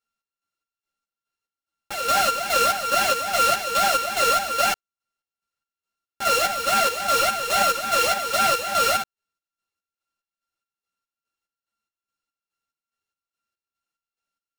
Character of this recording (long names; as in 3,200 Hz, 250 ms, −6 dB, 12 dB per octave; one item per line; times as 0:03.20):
a buzz of ramps at a fixed pitch in blocks of 32 samples
chopped level 2.4 Hz, depth 60%, duty 50%
aliases and images of a low sample rate 15,000 Hz, jitter 20%
a shimmering, thickened sound